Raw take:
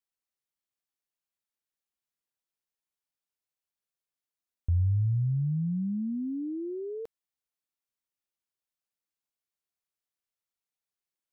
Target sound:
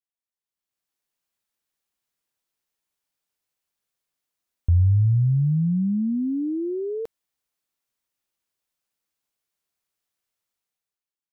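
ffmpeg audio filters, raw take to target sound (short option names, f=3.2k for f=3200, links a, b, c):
-af "dynaudnorm=f=160:g=9:m=15dB,volume=-7dB"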